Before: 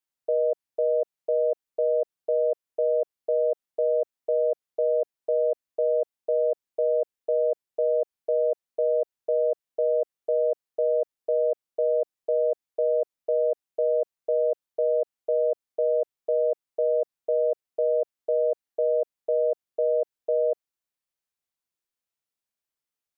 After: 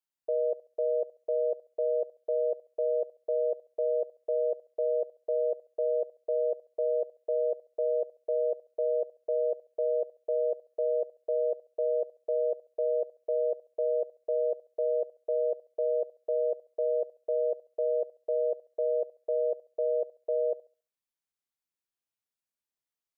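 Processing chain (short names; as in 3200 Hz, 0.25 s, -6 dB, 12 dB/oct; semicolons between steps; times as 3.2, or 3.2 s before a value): thinning echo 69 ms, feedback 34%, high-pass 480 Hz, level -17 dB; gain -5 dB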